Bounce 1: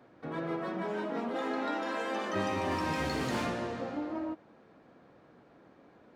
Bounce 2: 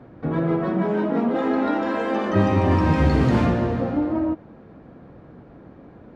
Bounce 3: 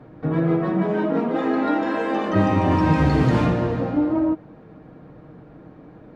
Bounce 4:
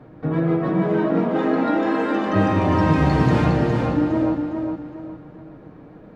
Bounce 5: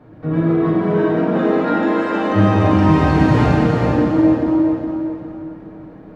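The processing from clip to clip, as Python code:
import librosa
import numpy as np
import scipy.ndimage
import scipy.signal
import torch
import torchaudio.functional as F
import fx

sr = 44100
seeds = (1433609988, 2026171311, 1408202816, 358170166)

y1 = fx.riaa(x, sr, side='playback')
y1 = y1 * librosa.db_to_amplitude(8.5)
y2 = y1 + 0.4 * np.pad(y1, (int(6.5 * sr / 1000.0), 0))[:len(y1)]
y3 = fx.echo_feedback(y2, sr, ms=410, feedback_pct=33, wet_db=-5.0)
y4 = fx.rev_plate(y3, sr, seeds[0], rt60_s=2.5, hf_ratio=0.8, predelay_ms=0, drr_db=-4.0)
y4 = y4 * librosa.db_to_amplitude(-2.0)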